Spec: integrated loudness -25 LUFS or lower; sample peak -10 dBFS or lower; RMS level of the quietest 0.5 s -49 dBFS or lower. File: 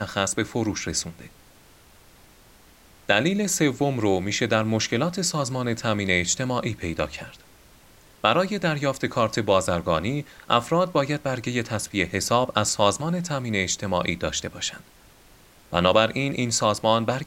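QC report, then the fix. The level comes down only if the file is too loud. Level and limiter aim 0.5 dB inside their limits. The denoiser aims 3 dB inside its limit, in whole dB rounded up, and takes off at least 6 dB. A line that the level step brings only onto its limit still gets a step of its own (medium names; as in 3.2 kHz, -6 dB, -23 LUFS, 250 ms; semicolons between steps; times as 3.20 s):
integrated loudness -24.0 LUFS: fail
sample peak -3.5 dBFS: fail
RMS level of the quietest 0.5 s -53 dBFS: pass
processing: trim -1.5 dB; peak limiter -10.5 dBFS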